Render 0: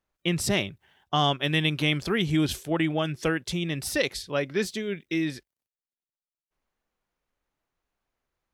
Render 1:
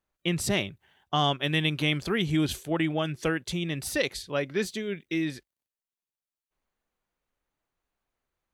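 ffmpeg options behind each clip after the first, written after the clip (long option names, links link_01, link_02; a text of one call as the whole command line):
ffmpeg -i in.wav -af "bandreject=frequency=5300:width=14,volume=-1.5dB" out.wav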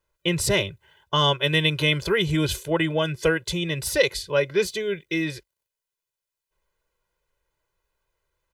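ffmpeg -i in.wav -af "aecho=1:1:2:0.98,volume=3dB" out.wav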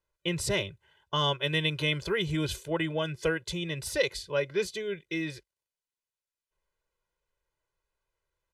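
ffmpeg -i in.wav -af "lowpass=11000,volume=-7dB" out.wav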